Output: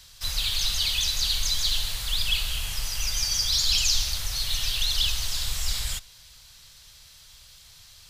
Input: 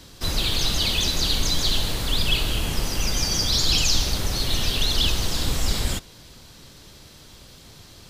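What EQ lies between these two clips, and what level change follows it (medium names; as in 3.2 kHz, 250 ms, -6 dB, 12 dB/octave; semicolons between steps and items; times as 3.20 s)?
amplifier tone stack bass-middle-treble 10-0-10; 0.0 dB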